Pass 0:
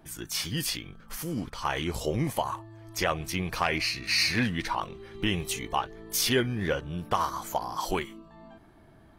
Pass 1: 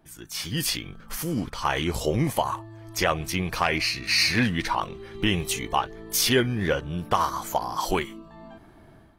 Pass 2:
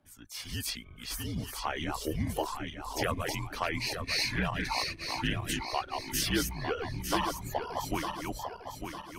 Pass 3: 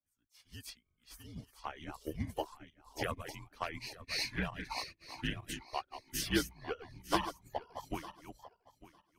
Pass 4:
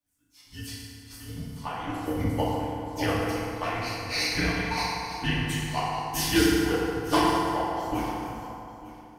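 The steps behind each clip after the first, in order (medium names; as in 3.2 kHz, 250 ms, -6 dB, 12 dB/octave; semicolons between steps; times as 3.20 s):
level rider gain up to 10 dB; trim -5 dB
backward echo that repeats 451 ms, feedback 66%, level -3.5 dB; reverb removal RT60 0.71 s; frequency shift -62 Hz; trim -8.5 dB
upward expansion 2.5:1, over -46 dBFS
FDN reverb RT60 2.6 s, high-frequency decay 0.55×, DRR -8 dB; trim +3 dB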